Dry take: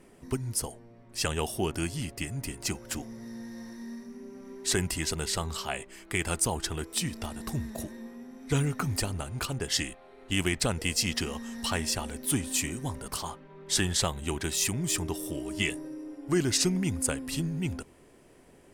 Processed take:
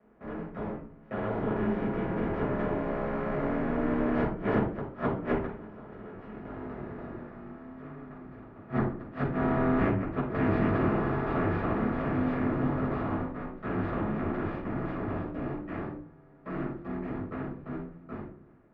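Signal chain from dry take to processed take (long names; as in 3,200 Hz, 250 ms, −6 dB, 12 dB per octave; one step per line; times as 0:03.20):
compressor on every frequency bin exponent 0.2
source passing by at 0:06.77, 38 m/s, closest 21 metres
low-pass filter 1,600 Hz 24 dB per octave
mains-hum notches 60/120 Hz
noise gate with hold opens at −35 dBFS
automatic gain control gain up to 4 dB
gate with flip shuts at −20 dBFS, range −29 dB
frequency shifter +21 Hz
convolution reverb RT60 0.45 s, pre-delay 5 ms, DRR −6.5 dB
level −2 dB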